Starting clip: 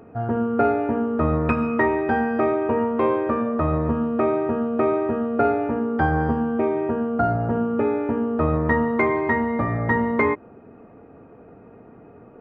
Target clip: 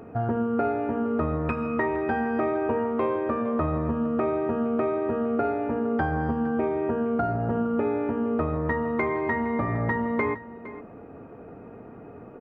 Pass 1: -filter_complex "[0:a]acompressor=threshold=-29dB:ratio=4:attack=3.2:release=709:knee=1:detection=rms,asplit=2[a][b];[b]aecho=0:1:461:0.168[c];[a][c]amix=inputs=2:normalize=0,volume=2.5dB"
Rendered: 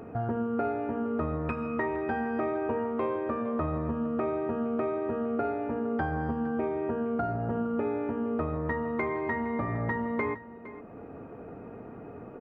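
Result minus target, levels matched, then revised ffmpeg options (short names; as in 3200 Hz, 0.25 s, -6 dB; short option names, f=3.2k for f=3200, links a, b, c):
compressor: peak gain reduction +4.5 dB
-filter_complex "[0:a]acompressor=threshold=-23dB:ratio=4:attack=3.2:release=709:knee=1:detection=rms,asplit=2[a][b];[b]aecho=0:1:461:0.168[c];[a][c]amix=inputs=2:normalize=0,volume=2.5dB"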